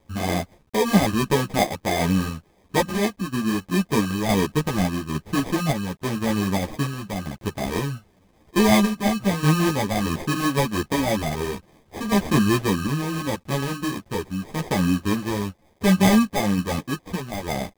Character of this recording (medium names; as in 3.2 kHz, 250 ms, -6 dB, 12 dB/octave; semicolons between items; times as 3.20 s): aliases and images of a low sample rate 1.4 kHz, jitter 0%; random-step tremolo; a quantiser's noise floor 10-bit, dither none; a shimmering, thickened sound